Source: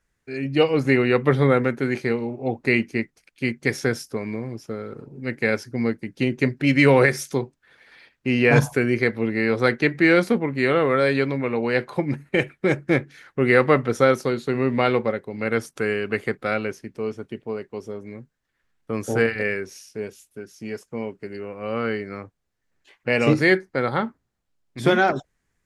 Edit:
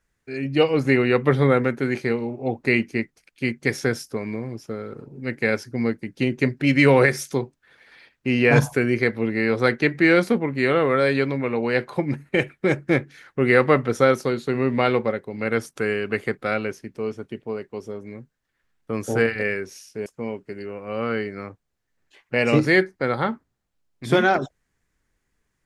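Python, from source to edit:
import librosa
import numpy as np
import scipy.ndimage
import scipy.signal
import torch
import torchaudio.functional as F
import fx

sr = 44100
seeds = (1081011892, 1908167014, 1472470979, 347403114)

y = fx.edit(x, sr, fx.cut(start_s=20.06, length_s=0.74), tone=tone)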